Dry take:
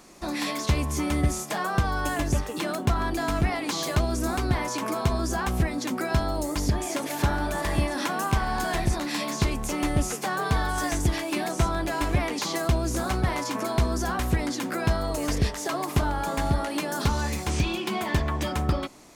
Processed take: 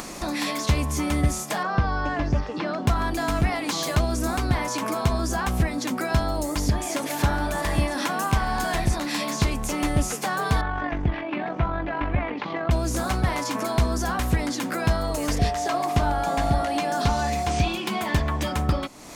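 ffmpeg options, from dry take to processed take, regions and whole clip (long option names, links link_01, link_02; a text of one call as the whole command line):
ffmpeg -i in.wav -filter_complex "[0:a]asettb=1/sr,asplit=3[link_01][link_02][link_03];[link_01]atrim=end=1.634[link_04];[link_02]atrim=start=1.63:end=2.87,asetpts=PTS-STARTPTS,afade=type=in:duration=0.004:curve=qsin,afade=type=out:start_time=1.236:duration=0.004:curve=qsin,acrossover=split=2700[link_05][link_06];[link_06]acompressor=threshold=-51dB:ratio=4:attack=1:release=60[link_07];[link_05][link_07]amix=inputs=2:normalize=0,lowpass=frequency=5100:width_type=q:width=3.6,highshelf=frequency=3600:gain=-8[link_08];[link_03]atrim=start=2.866[link_09];[link_04][link_08]acrossfade=duration=0.004:curve1=hsin:curve2=qsin[link_10];[link_10][link_09]acrossfade=duration=0.004:curve1=qsin:curve2=hsin,asettb=1/sr,asplit=3[link_11][link_12][link_13];[link_11]atrim=end=10.614[link_14];[link_12]atrim=start=10.61:end=12.71,asetpts=PTS-STARTPTS,afade=type=in:duration=0.004:curve=qsin,afade=type=out:start_time=2.096:duration=0.004:curve=qsin,lowpass=frequency=2700:width=0.5412,lowpass=frequency=2700:width=1.3066,tremolo=f=47:d=0.462[link_15];[link_13]atrim=start=12.706[link_16];[link_14][link_15]acrossfade=duration=0.004:curve1=hsin:curve2=qsin[link_17];[link_17][link_16]acrossfade=duration=0.004:curve1=qsin:curve2=hsin,asettb=1/sr,asplit=3[link_18][link_19][link_20];[link_18]atrim=end=15.394[link_21];[link_19]atrim=start=15.39:end=17.68,asetpts=PTS-STARTPTS,afade=type=in:duration=0.004:curve=qsin,afade=type=out:start_time=2.286:duration=0.004:curve=qsin,bandreject=frequency=75.66:width_type=h:width=4,bandreject=frequency=151.32:width_type=h:width=4,bandreject=frequency=226.98:width_type=h:width=4,bandreject=frequency=302.64:width_type=h:width=4,bandreject=frequency=378.3:width_type=h:width=4,bandreject=frequency=453.96:width_type=h:width=4,bandreject=frequency=529.62:width_type=h:width=4,bandreject=frequency=605.28:width_type=h:width=4,bandreject=frequency=680.94:width_type=h:width=4,bandreject=frequency=756.6:width_type=h:width=4,bandreject=frequency=832.26:width_type=h:width=4,bandreject=frequency=907.92:width_type=h:width=4,bandreject=frequency=983.58:width_type=h:width=4,bandreject=frequency=1059.24:width_type=h:width=4,bandreject=frequency=1134.9:width_type=h:width=4,bandreject=frequency=1210.56:width_type=h:width=4,bandreject=frequency=1286.22:width_type=h:width=4,bandreject=frequency=1361.88:width_type=h:width=4,bandreject=frequency=1437.54:width_type=h:width=4,bandreject=frequency=1513.2:width_type=h:width=4,bandreject=frequency=1588.86:width_type=h:width=4,bandreject=frequency=1664.52:width_type=h:width=4,bandreject=frequency=1740.18:width_type=h:width=4,bandreject=frequency=1815.84:width_type=h:width=4,bandreject=frequency=1891.5:width_type=h:width=4,bandreject=frequency=1967.16:width_type=h:width=4,bandreject=frequency=2042.82:width_type=h:width=4,bandreject=frequency=2118.48:width_type=h:width=4,bandreject=frequency=2194.14:width_type=h:width=4,bandreject=frequency=2269.8:width_type=h:width=4,bandreject=frequency=2345.46:width_type=h:width=4,bandreject=frequency=2421.12:width_type=h:width=4,bandreject=frequency=2496.78:width_type=h:width=4,bandreject=frequency=2572.44:width_type=h:width=4,bandreject=frequency=2648.1:width_type=h:width=4,bandreject=frequency=2723.76:width_type=h:width=4,bandreject=frequency=2799.42:width_type=h:width=4,acrossover=split=7400[link_22][link_23];[link_23]acompressor=threshold=-48dB:ratio=4:attack=1:release=60[link_24];[link_22][link_24]amix=inputs=2:normalize=0,aeval=exprs='val(0)+0.0447*sin(2*PI*710*n/s)':channel_layout=same[link_25];[link_20]atrim=start=17.676[link_26];[link_21][link_25]acrossfade=duration=0.004:curve1=hsin:curve2=qsin[link_27];[link_27][link_26]acrossfade=duration=0.004:curve1=qsin:curve2=hsin,equalizer=frequency=370:width_type=o:width=0.25:gain=-5,acompressor=mode=upward:threshold=-27dB:ratio=2.5,volume=2dB" out.wav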